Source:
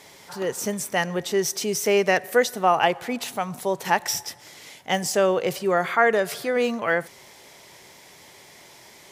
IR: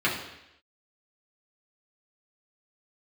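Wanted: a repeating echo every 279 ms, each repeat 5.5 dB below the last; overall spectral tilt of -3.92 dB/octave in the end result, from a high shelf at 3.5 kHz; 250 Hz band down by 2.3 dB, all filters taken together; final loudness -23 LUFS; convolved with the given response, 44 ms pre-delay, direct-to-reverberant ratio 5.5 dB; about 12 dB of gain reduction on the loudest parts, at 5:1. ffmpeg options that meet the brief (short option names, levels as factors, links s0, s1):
-filter_complex "[0:a]equalizer=f=250:t=o:g=-3.5,highshelf=f=3500:g=-3.5,acompressor=threshold=0.0398:ratio=5,aecho=1:1:279|558|837|1116|1395|1674|1953:0.531|0.281|0.149|0.079|0.0419|0.0222|0.0118,asplit=2[s0][s1];[1:a]atrim=start_sample=2205,adelay=44[s2];[s1][s2]afir=irnorm=-1:irlink=0,volume=0.106[s3];[s0][s3]amix=inputs=2:normalize=0,volume=2.37"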